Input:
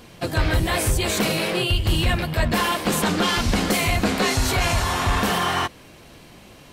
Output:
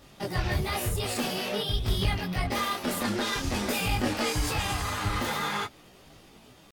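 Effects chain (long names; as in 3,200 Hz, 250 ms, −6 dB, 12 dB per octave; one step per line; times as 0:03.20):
pitch shifter +2.5 semitones
micro pitch shift up and down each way 17 cents
level −4 dB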